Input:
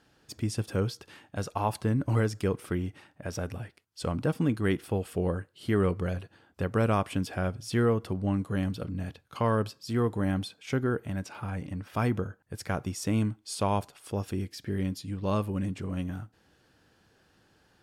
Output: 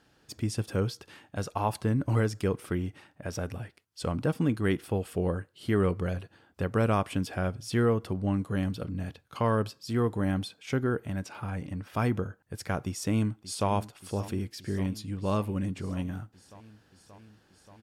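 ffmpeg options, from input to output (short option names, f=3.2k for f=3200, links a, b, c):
-filter_complex "[0:a]asplit=2[a][b];[b]afade=t=in:st=12.83:d=0.01,afade=t=out:st=13.7:d=0.01,aecho=0:1:580|1160|1740|2320|2900|3480|4060|4640|5220|5800|6380|6960:0.149624|0.119699|0.0957591|0.0766073|0.0612858|0.0490286|0.0392229|0.0313783|0.0251027|0.0200821|0.0160657|0.0128526[c];[a][c]amix=inputs=2:normalize=0"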